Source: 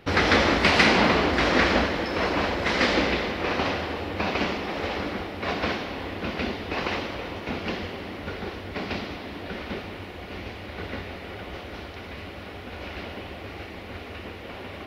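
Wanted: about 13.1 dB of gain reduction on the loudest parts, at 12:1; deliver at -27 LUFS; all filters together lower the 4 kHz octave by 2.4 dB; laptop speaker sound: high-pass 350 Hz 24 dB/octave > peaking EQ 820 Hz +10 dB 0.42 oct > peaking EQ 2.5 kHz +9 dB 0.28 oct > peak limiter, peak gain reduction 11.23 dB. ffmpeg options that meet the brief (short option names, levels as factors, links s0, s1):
-af "equalizer=f=4000:t=o:g=-5.5,acompressor=threshold=0.0355:ratio=12,highpass=f=350:w=0.5412,highpass=f=350:w=1.3066,equalizer=f=820:t=o:w=0.42:g=10,equalizer=f=2500:t=o:w=0.28:g=9,volume=2.66,alimiter=limit=0.119:level=0:latency=1"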